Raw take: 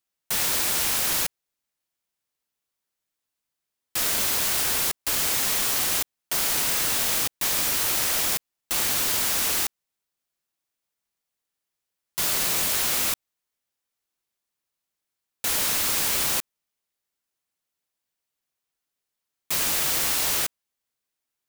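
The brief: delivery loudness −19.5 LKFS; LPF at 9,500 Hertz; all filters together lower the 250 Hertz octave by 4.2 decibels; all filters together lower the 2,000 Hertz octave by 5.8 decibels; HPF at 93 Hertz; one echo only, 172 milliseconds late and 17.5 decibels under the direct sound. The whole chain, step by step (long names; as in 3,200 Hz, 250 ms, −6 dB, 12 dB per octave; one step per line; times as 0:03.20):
high-pass filter 93 Hz
low-pass filter 9,500 Hz
parametric band 250 Hz −5.5 dB
parametric band 2,000 Hz −7.5 dB
single-tap delay 172 ms −17.5 dB
level +7.5 dB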